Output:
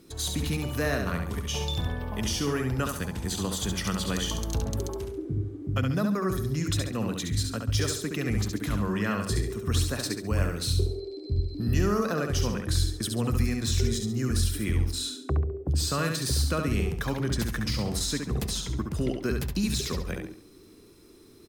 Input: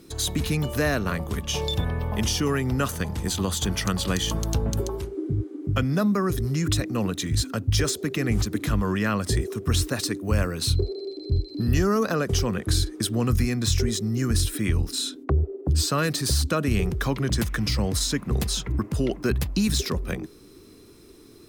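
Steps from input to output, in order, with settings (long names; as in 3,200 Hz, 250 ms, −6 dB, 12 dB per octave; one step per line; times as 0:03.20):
repeating echo 69 ms, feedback 36%, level −5 dB
level −5 dB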